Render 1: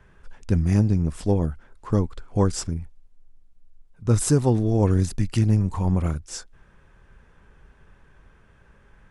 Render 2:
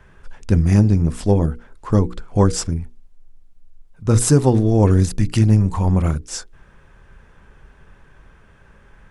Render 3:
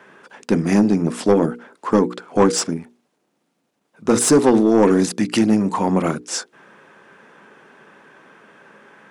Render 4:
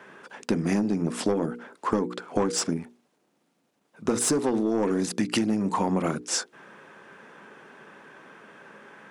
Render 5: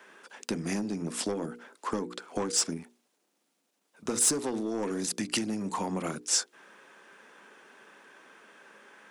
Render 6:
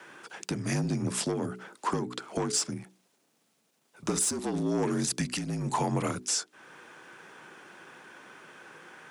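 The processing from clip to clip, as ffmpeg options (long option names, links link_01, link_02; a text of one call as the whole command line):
ffmpeg -i in.wav -af "bandreject=frequency=60:width_type=h:width=6,bandreject=frequency=120:width_type=h:width=6,bandreject=frequency=180:width_type=h:width=6,bandreject=frequency=240:width_type=h:width=6,bandreject=frequency=300:width_type=h:width=6,bandreject=frequency=360:width_type=h:width=6,bandreject=frequency=420:width_type=h:width=6,bandreject=frequency=480:width_type=h:width=6,volume=6dB" out.wav
ffmpeg -i in.wav -af "highpass=frequency=220:width=0.5412,highpass=frequency=220:width=1.3066,asoftclip=type=tanh:threshold=-13.5dB,highshelf=frequency=5100:gain=-5.5,volume=7.5dB" out.wav
ffmpeg -i in.wav -af "acompressor=threshold=-20dB:ratio=12,volume=-1dB" out.wav
ffmpeg -i in.wav -filter_complex "[0:a]highshelf=frequency=2900:gain=11,acrossover=split=180|720|3500[link_01][link_02][link_03][link_04];[link_01]aeval=exprs='sgn(val(0))*max(abs(val(0))-0.00211,0)':channel_layout=same[link_05];[link_05][link_02][link_03][link_04]amix=inputs=4:normalize=0,volume=-7.5dB" out.wav
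ffmpeg -i in.wav -af "highpass=130,alimiter=limit=-22.5dB:level=0:latency=1:release=435,afreqshift=-52,volume=4.5dB" out.wav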